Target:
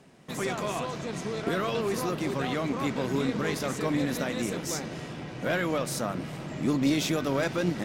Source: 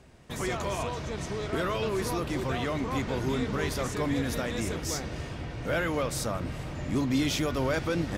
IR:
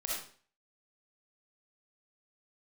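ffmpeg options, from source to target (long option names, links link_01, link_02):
-af "asetrate=45938,aresample=44100,aeval=exprs='0.158*(cos(1*acos(clip(val(0)/0.158,-1,1)))-cos(1*PI/2))+0.0398*(cos(2*acos(clip(val(0)/0.158,-1,1)))-cos(2*PI/2))':channel_layout=same,lowshelf=frequency=110:width_type=q:width=1.5:gain=-14"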